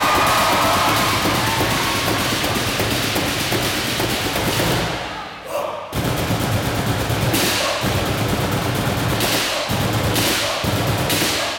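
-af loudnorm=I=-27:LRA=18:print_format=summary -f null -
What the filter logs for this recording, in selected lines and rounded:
Input Integrated:    -18.6 LUFS
Input True Peak:      -8.3 dBTP
Input LRA:             2.2 LU
Input Threshold:     -28.6 LUFS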